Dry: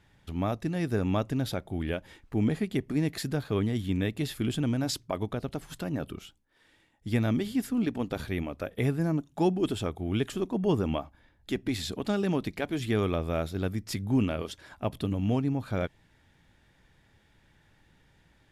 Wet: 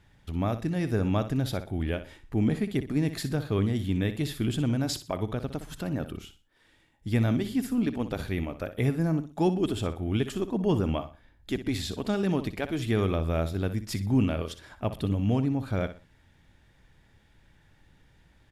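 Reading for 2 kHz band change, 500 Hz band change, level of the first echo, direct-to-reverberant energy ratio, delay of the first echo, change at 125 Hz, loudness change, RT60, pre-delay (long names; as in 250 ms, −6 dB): +0.5 dB, +0.5 dB, −12.0 dB, no reverb audible, 61 ms, +2.5 dB, +1.5 dB, no reverb audible, no reverb audible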